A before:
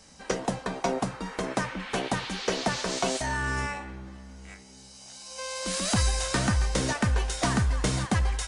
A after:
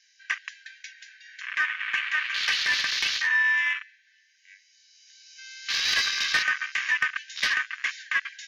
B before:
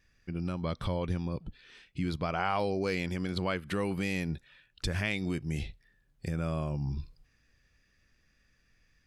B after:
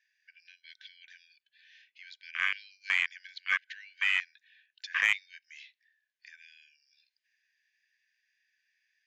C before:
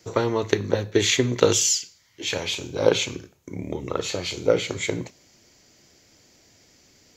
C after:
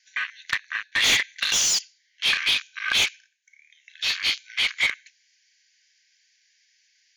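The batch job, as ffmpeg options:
-filter_complex "[0:a]afftfilt=real='re*between(b*sr/4096,1500,7200)':imag='im*between(b*sr/4096,1500,7200)':win_size=4096:overlap=0.75,afwtdn=0.0158,asplit=2[s0][s1];[s1]highpass=f=720:p=1,volume=15.8,asoftclip=type=tanh:threshold=0.531[s2];[s0][s2]amix=inputs=2:normalize=0,lowpass=f=2900:p=1,volume=0.501,volume=0.75"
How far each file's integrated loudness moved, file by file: +3.5 LU, +4.0 LU, +1.0 LU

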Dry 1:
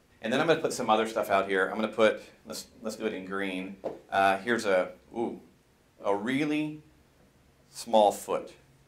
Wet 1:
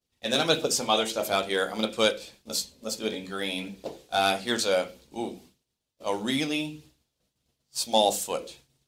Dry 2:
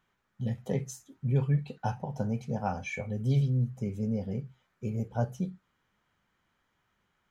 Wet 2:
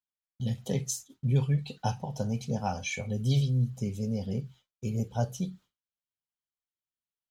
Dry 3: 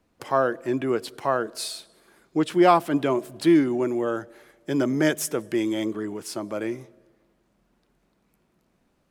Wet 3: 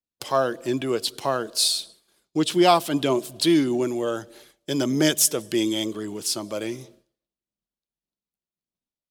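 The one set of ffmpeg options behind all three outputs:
-af "aphaser=in_gain=1:out_gain=1:delay=2:decay=0.22:speed=1.6:type=triangular,agate=range=0.0224:threshold=0.00398:ratio=3:detection=peak,highshelf=f=2600:t=q:w=1.5:g=9.5"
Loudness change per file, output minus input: +1.0 LU, +1.0 LU, +1.5 LU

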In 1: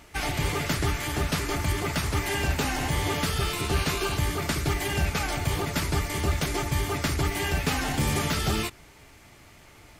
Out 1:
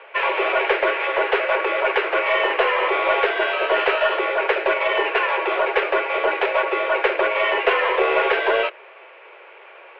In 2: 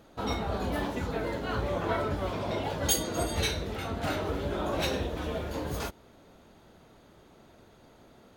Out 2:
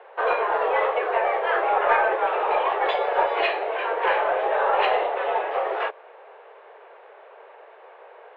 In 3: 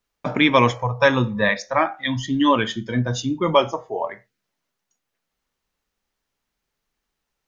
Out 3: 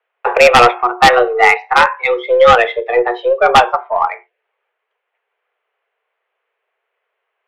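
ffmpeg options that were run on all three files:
-af "highpass=f=170:t=q:w=0.5412,highpass=f=170:t=q:w=1.307,lowpass=f=2600:t=q:w=0.5176,lowpass=f=2600:t=q:w=0.7071,lowpass=f=2600:t=q:w=1.932,afreqshift=240,aeval=exprs='0.75*(cos(1*acos(clip(val(0)/0.75,-1,1)))-cos(1*PI/2))+0.0299*(cos(4*acos(clip(val(0)/0.75,-1,1)))-cos(4*PI/2))+0.0376*(cos(5*acos(clip(val(0)/0.75,-1,1)))-cos(5*PI/2))+0.0266*(cos(6*acos(clip(val(0)/0.75,-1,1)))-cos(6*PI/2))+0.0531*(cos(7*acos(clip(val(0)/0.75,-1,1)))-cos(7*PI/2))':c=same,aeval=exprs='1*sin(PI/2*3.16*val(0)/1)':c=same,volume=0.891"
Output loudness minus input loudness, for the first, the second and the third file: +7.5 LU, +9.0 LU, +9.0 LU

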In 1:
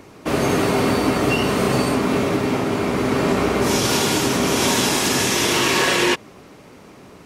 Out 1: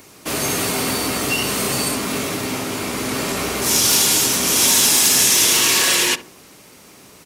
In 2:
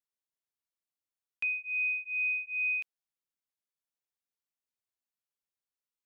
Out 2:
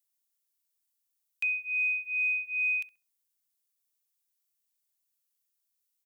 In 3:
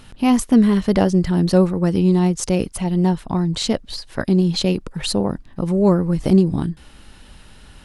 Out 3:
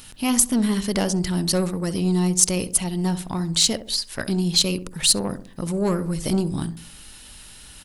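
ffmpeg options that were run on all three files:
-filter_complex "[0:a]acontrast=85,crystalizer=i=6:c=0,asplit=2[s0][s1];[s1]adelay=66,lowpass=f=880:p=1,volume=0.299,asplit=2[s2][s3];[s3]adelay=66,lowpass=f=880:p=1,volume=0.46,asplit=2[s4][s5];[s5]adelay=66,lowpass=f=880:p=1,volume=0.46,asplit=2[s6][s7];[s7]adelay=66,lowpass=f=880:p=1,volume=0.46,asplit=2[s8][s9];[s9]adelay=66,lowpass=f=880:p=1,volume=0.46[s10];[s2][s4][s6][s8][s10]amix=inputs=5:normalize=0[s11];[s0][s11]amix=inputs=2:normalize=0,volume=0.224"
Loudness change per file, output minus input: +3.0 LU, +2.5 LU, -3.0 LU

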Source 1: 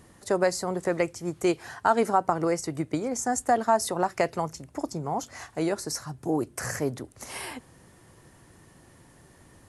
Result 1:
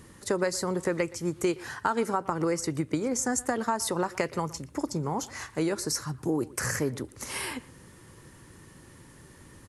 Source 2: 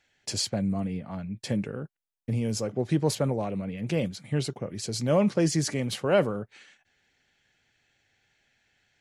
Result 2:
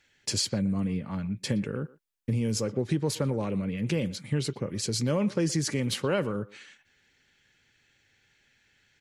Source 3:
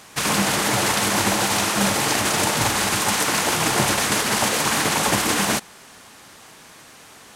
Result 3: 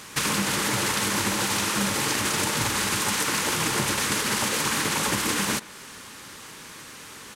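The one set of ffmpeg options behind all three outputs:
-filter_complex "[0:a]equalizer=f=700:w=3.9:g=-11.5,acompressor=threshold=0.0398:ratio=3,asplit=2[s0][s1];[s1]adelay=120,highpass=300,lowpass=3400,asoftclip=type=hard:threshold=0.0708,volume=0.112[s2];[s0][s2]amix=inputs=2:normalize=0,volume=1.5"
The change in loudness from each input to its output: -2.0 LU, -1.0 LU, -4.5 LU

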